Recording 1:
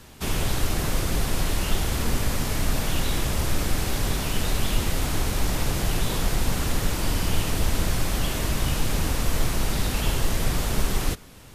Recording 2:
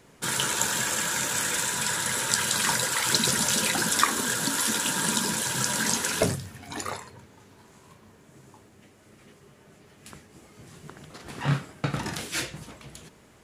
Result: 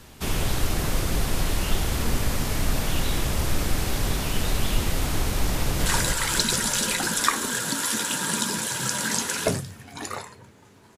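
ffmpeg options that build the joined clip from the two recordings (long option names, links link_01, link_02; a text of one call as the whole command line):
ffmpeg -i cue0.wav -i cue1.wav -filter_complex "[0:a]apad=whole_dur=10.97,atrim=end=10.97,atrim=end=5.862[link_01];[1:a]atrim=start=2.608:end=7.72[link_02];[link_01][link_02]acrossfade=duration=0.004:curve1=hsin:curve2=hsin,asplit=2[link_03][link_04];[link_04]afade=type=in:start_time=5.52:duration=0.01,afade=type=out:start_time=5.86:duration=0.01,aecho=0:1:270|540|810|1080|1350|1620|1890:0.794328|0.397164|0.198582|0.099291|0.0496455|0.0248228|0.0124114[link_05];[link_03][link_05]amix=inputs=2:normalize=0" out.wav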